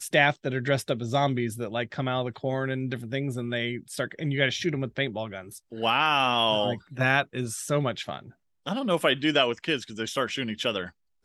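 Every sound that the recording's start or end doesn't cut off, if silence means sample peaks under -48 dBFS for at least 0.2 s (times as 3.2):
8.66–10.9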